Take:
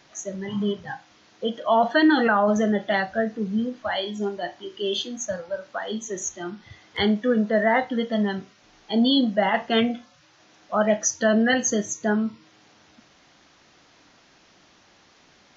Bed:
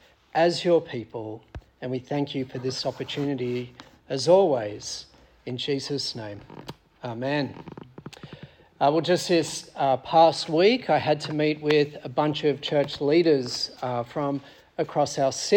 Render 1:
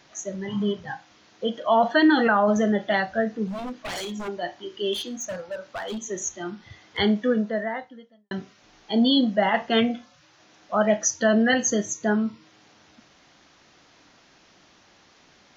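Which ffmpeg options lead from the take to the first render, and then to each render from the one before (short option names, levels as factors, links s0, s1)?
-filter_complex "[0:a]asplit=3[s0][s1][s2];[s0]afade=t=out:st=3.46:d=0.02[s3];[s1]aeval=exprs='0.0447*(abs(mod(val(0)/0.0447+3,4)-2)-1)':c=same,afade=t=in:st=3.46:d=0.02,afade=t=out:st=4.27:d=0.02[s4];[s2]afade=t=in:st=4.27:d=0.02[s5];[s3][s4][s5]amix=inputs=3:normalize=0,asettb=1/sr,asplit=3[s6][s7][s8];[s6]atrim=end=4.934[s9];[s7]atrim=start=4.93:end=5.98,asetpts=PTS-STARTPTS,afade=t=in:d=0.004:c=qsin,afade=t=out:st=1.046:d=0.004:c=qsin,asoftclip=type=hard:threshold=0.0398[s10];[s8]atrim=start=5.976[s11];[s9][s10]acrossfade=d=0.004:c1=hsin:c2=qsin[s12];[s12][s11]acrossfade=d=0.004:c1=qsin:c2=hsin,asplit=2[s13][s14];[s13]atrim=end=8.31,asetpts=PTS-STARTPTS,afade=t=out:st=7.26:d=1.05:c=qua[s15];[s14]atrim=start=8.31,asetpts=PTS-STARTPTS,afade=t=in:d=0.004:c=hsin[s16];[s15][s16]concat=n=2:v=0:a=1"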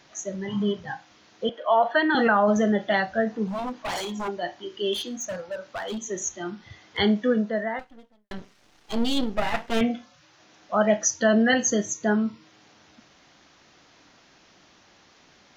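-filter_complex "[0:a]asettb=1/sr,asplit=3[s0][s1][s2];[s0]atrim=end=1.494[s3];[s1]atrim=start=1.49:end=2.15,asetpts=PTS-STARTPTS,afade=t=in:d=0.004:c=qsin,afade=t=out:st=0.656:d=0.004:c=qsin,acrossover=split=360 3400:gain=0.0708 1 0.178[s4][s5][s6];[s4][s5][s6]amix=inputs=3:normalize=0[s7];[s2]atrim=start=2.146[s8];[s3][s7]acrossfade=d=0.004:c1=hsin:c2=qsin[s9];[s9][s8]acrossfade=d=0.004:c1=qsin:c2=hsin,asettb=1/sr,asplit=3[s10][s11][s12];[s10]atrim=end=3.274[s13];[s11]atrim=start=3.27:end=4.31,asetpts=PTS-STARTPTS,afade=t=in:d=0.004:c=qsin,afade=t=out:st=1.036:d=0.004:c=qsin,equalizer=f=910:t=o:w=0.67:g=8[s14];[s12]atrim=start=4.306[s15];[s13][s14]acrossfade=d=0.004:c1=hsin:c2=qsin[s16];[s16][s15]acrossfade=d=0.004:c1=qsin:c2=hsin,asettb=1/sr,asplit=3[s17][s18][s19];[s17]atrim=end=7.794[s20];[s18]atrim=start=7.79:end=9.81,asetpts=PTS-STARTPTS,afade=t=in:d=0.004:c=qsin,afade=t=out:st=2.016:d=0.004:c=qsin,aeval=exprs='max(val(0),0)':c=same[s21];[s19]atrim=start=9.806[s22];[s20][s21]acrossfade=d=0.004:c1=hsin:c2=qsin[s23];[s23][s22]acrossfade=d=0.004:c1=qsin:c2=hsin"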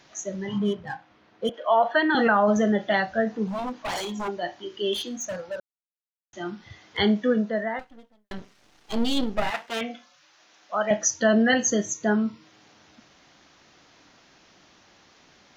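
-filter_complex "[0:a]asettb=1/sr,asplit=3[s0][s1][s2];[s0]atrim=end=0.584[s3];[s1]atrim=start=0.58:end=1.54,asetpts=PTS-STARTPTS,afade=t=in:d=0.004:c=qsin,afade=t=out:st=0.956:d=0.004:c=qsin,adynamicsmooth=sensitivity=6:basefreq=2400[s4];[s2]atrim=start=1.536[s5];[s3][s4]acrossfade=d=0.004:c1=hsin:c2=qsin[s6];[s6][s5]acrossfade=d=0.004:c1=qsin:c2=hsin,asettb=1/sr,asplit=3[s7][s8][s9];[s7]atrim=end=9.504[s10];[s8]atrim=start=9.5:end=10.91,asetpts=PTS-STARTPTS,afade=t=in:d=0.004:c=qsin,afade=t=out:st=1.406:d=0.004:c=qsin,highpass=f=830:p=1[s11];[s9]atrim=start=10.906[s12];[s10][s11]acrossfade=d=0.004:c1=hsin:c2=qsin[s13];[s13][s12]acrossfade=d=0.004:c1=qsin:c2=hsin,asplit=3[s14][s15][s16];[s14]atrim=end=5.6,asetpts=PTS-STARTPTS,afade=t=out:st=5.596:d=0.004:c=hsin[s17];[s15]atrim=start=5.6:end=6.33,asetpts=PTS-STARTPTS,volume=0[s18];[s16]atrim=start=6.33,asetpts=PTS-STARTPTS,afade=t=in:d=0.004:c=hsin[s19];[s17][s18][s19]concat=n=3:v=0:a=1"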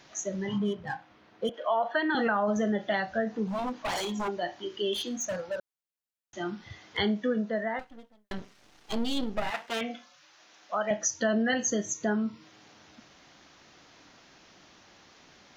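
-af "acompressor=threshold=0.0355:ratio=2"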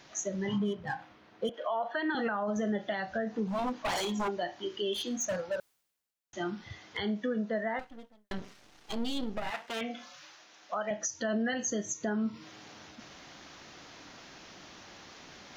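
-af "areverse,acompressor=mode=upward:threshold=0.00708:ratio=2.5,areverse,alimiter=limit=0.0668:level=0:latency=1:release=193"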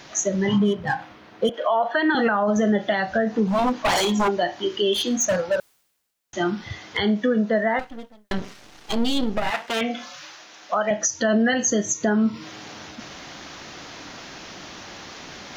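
-af "volume=3.76"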